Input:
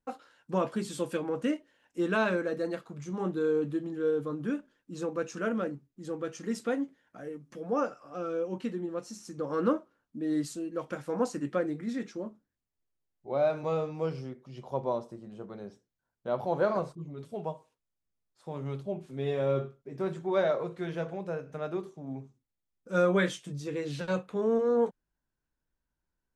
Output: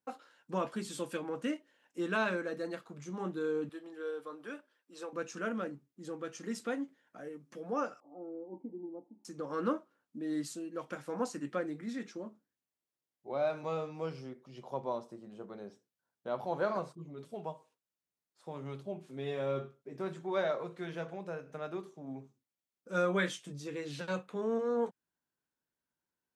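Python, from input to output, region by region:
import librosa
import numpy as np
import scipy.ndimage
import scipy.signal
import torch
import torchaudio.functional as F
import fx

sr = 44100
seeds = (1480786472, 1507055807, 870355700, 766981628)

y = fx.chain(x, sr, fx.highpass(hz=530.0, slope=12),
    fx.notch(hz=6700.0, q=6.9), at=(3.69, 5.13))
y = fx.chain(y, sr, fx.formant_cascade(vowel='u'),
    fx.peak_eq(hz=720.0, db=10.5, octaves=1.2), at=(8.0, 9.25))
y = fx.dynamic_eq(y, sr, hz=470.0, q=0.9, threshold_db=-39.0, ratio=4.0, max_db=-4)
y = scipy.signal.sosfilt(scipy.signal.bessel(2, 200.0, 'highpass', norm='mag', fs=sr, output='sos'), y)
y = F.gain(torch.from_numpy(y), -2.0).numpy()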